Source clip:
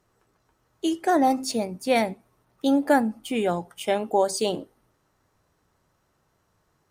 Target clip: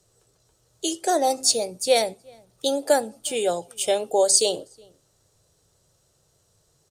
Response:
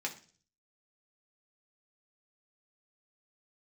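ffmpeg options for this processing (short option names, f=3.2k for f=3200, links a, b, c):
-filter_complex "[0:a]equalizer=f=125:t=o:w=1:g=5,equalizer=f=250:t=o:w=1:g=-9,equalizer=f=500:t=o:w=1:g=6,equalizer=f=1k:t=o:w=1:g=-8,equalizer=f=2k:t=o:w=1:g=-7,equalizer=f=4k:t=o:w=1:g=6,equalizer=f=8k:t=o:w=1:g=12,asplit=2[a][b];[b]adelay=367.3,volume=-29dB,highshelf=f=4k:g=-8.27[c];[a][c]amix=inputs=2:normalize=0,acrossover=split=320|790|2400[d][e][f][g];[d]acompressor=threshold=-45dB:ratio=6[h];[h][e][f][g]amix=inputs=4:normalize=0,volume=2.5dB"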